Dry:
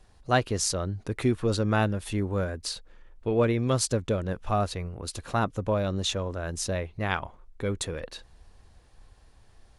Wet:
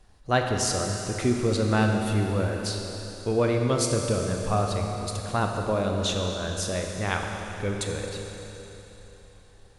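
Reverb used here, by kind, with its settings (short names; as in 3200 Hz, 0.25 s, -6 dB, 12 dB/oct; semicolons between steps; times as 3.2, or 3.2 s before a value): Schroeder reverb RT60 3.6 s, combs from 29 ms, DRR 2 dB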